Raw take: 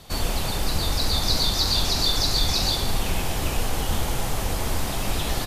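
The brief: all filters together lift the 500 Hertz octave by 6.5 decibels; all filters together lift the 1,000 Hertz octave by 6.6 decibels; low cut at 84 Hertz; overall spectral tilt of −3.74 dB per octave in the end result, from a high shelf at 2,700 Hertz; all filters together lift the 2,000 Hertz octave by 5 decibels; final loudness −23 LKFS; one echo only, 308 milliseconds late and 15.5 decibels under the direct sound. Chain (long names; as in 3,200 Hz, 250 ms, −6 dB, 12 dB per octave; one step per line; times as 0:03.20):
high-pass filter 84 Hz
parametric band 500 Hz +6.5 dB
parametric band 1,000 Hz +5.5 dB
parametric band 2,000 Hz +7.5 dB
high-shelf EQ 2,700 Hz −7 dB
single-tap delay 308 ms −15.5 dB
level +1.5 dB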